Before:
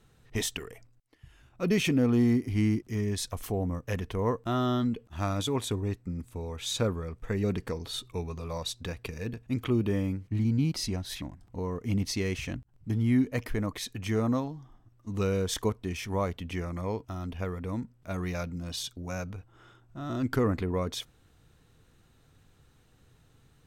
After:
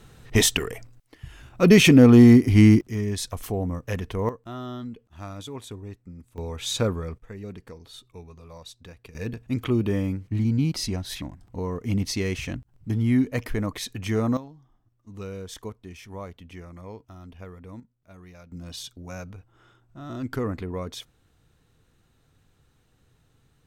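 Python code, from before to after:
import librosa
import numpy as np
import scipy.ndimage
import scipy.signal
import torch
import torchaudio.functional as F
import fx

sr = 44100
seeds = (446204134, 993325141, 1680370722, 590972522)

y = fx.gain(x, sr, db=fx.steps((0.0, 12.0), (2.81, 3.0), (4.29, -7.5), (6.38, 4.0), (7.18, -9.0), (9.15, 3.5), (14.37, -8.0), (17.8, -14.5), (18.52, -2.0)))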